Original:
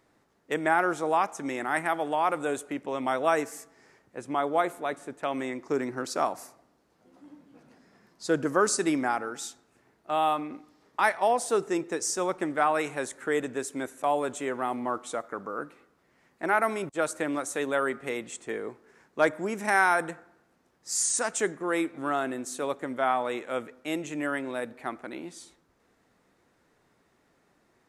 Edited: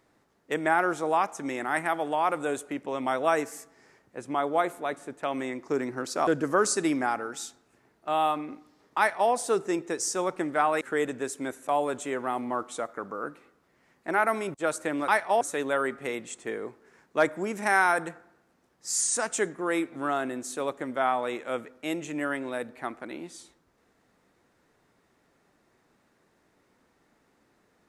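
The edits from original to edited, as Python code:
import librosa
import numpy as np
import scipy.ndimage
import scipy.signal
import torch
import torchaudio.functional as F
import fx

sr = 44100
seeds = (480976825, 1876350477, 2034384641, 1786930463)

y = fx.edit(x, sr, fx.cut(start_s=6.27, length_s=2.02),
    fx.duplicate(start_s=11.0, length_s=0.33, to_s=17.43),
    fx.cut(start_s=12.83, length_s=0.33), tone=tone)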